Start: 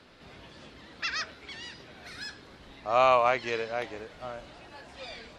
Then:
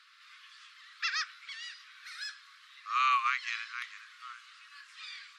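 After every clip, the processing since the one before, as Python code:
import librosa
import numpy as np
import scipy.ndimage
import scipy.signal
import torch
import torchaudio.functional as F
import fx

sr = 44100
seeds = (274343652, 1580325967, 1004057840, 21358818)

y = scipy.signal.sosfilt(scipy.signal.cheby1(8, 1.0, 1100.0, 'highpass', fs=sr, output='sos'), x)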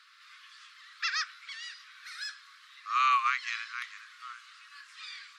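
y = fx.peak_eq(x, sr, hz=2800.0, db=-2.5, octaves=1.0)
y = y * librosa.db_to_amplitude(2.5)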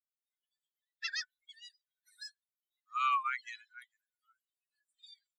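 y = fx.bin_expand(x, sr, power=3.0)
y = y * librosa.db_to_amplitude(-2.0)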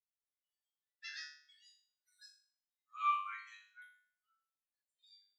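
y = fx.resonator_bank(x, sr, root=43, chord='fifth', decay_s=0.53)
y = y * librosa.db_to_amplitude(5.5)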